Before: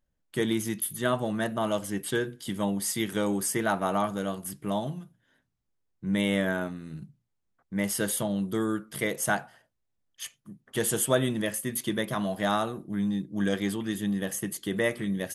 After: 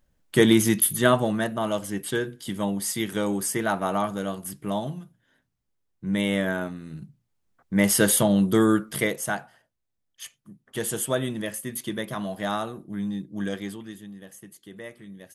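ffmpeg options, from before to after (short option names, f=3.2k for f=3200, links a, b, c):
-af "volume=17.5dB,afade=t=out:st=0.83:d=0.67:silence=0.375837,afade=t=in:st=7:d=0.95:silence=0.421697,afade=t=out:st=8.81:d=0.41:silence=0.298538,afade=t=out:st=13.36:d=0.72:silence=0.251189"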